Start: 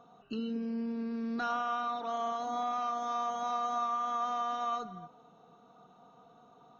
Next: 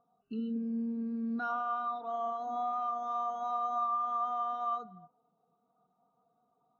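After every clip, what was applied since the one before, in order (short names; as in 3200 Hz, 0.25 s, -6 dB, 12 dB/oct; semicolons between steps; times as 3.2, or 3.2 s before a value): bell 67 Hz +8 dB 0.77 oct; spectral expander 1.5:1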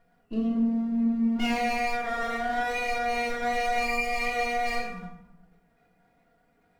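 minimum comb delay 0.38 ms; reverb RT60 0.85 s, pre-delay 3 ms, DRR -4 dB; gain +4.5 dB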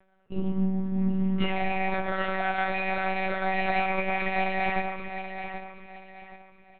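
feedback echo 0.776 s, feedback 32%, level -9 dB; monotone LPC vocoder at 8 kHz 190 Hz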